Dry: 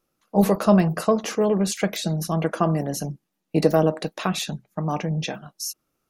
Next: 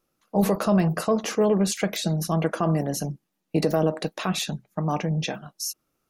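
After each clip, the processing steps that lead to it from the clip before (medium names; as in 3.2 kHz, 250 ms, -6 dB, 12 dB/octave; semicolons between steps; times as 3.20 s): peak limiter -11.5 dBFS, peak gain reduction 7 dB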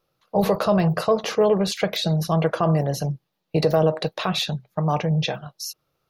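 graphic EQ 125/250/500/1000/4000/8000 Hz +10/-9/+6/+3/+8/-9 dB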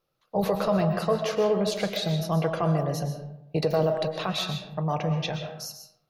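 algorithmic reverb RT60 0.81 s, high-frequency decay 0.55×, pre-delay 85 ms, DRR 6 dB; trim -5.5 dB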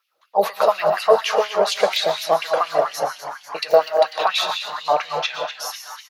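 LFO high-pass sine 4.2 Hz 510–2700 Hz; frequency-shifting echo 247 ms, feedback 63%, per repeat +140 Hz, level -11.5 dB; trim +6.5 dB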